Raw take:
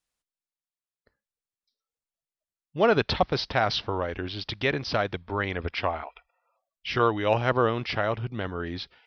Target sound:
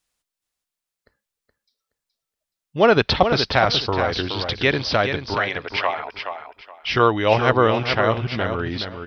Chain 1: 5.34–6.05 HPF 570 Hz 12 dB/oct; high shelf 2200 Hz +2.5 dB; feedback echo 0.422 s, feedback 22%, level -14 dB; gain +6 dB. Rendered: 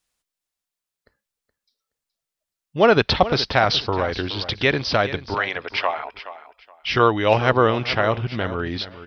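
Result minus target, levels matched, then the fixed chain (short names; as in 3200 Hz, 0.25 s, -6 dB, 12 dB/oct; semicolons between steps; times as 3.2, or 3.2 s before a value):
echo-to-direct -6.5 dB
5.34–6.05 HPF 570 Hz 12 dB/oct; high shelf 2200 Hz +2.5 dB; feedback echo 0.422 s, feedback 22%, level -7.5 dB; gain +6 dB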